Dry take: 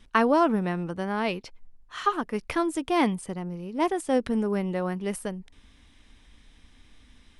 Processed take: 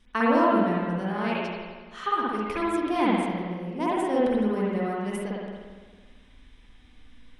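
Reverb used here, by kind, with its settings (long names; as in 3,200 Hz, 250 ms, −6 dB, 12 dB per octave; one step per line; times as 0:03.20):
spring reverb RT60 1.5 s, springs 52/56 ms, chirp 35 ms, DRR −6.5 dB
level −6.5 dB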